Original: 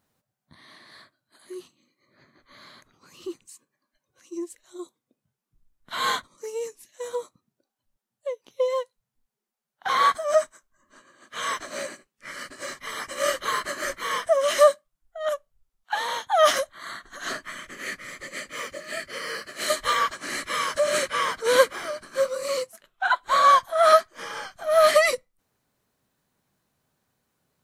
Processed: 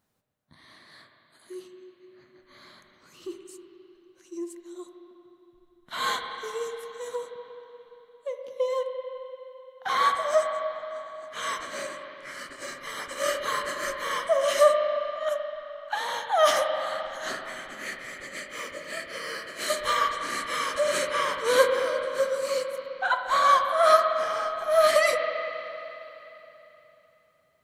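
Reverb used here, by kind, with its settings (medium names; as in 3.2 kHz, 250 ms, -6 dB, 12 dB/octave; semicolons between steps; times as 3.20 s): spring tank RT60 3.4 s, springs 38/43/58 ms, chirp 25 ms, DRR 4 dB; trim -3 dB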